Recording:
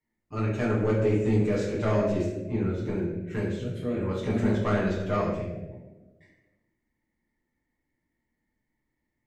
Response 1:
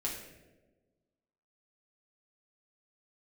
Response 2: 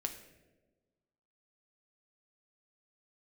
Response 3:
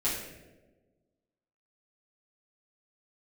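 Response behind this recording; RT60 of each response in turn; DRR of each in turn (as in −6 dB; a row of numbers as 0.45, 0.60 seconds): 3; 1.3, 1.3, 1.3 seconds; −3.0, 5.0, −8.0 decibels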